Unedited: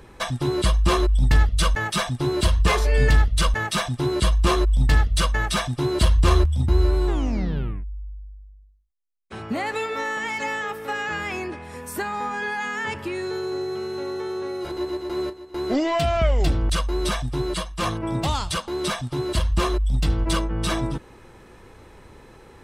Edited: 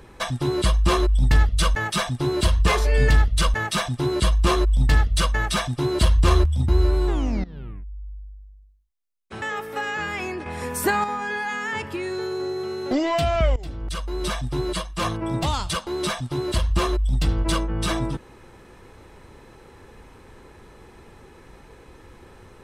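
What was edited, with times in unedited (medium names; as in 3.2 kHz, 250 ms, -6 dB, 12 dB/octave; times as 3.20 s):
7.44–8.16 s: fade in, from -19.5 dB
9.42–10.54 s: delete
11.58–12.16 s: gain +7 dB
14.03–15.72 s: delete
16.37–17.33 s: fade in, from -19.5 dB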